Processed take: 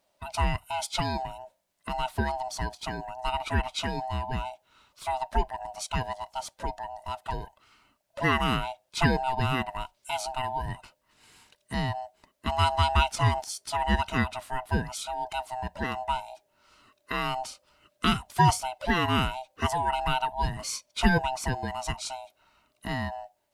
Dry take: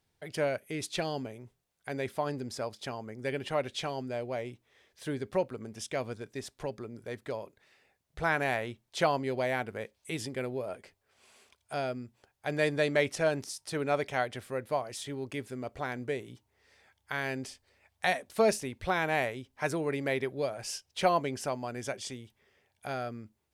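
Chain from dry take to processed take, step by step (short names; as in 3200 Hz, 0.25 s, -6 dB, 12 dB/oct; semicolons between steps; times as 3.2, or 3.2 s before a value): band-swap scrambler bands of 500 Hz; gain +4.5 dB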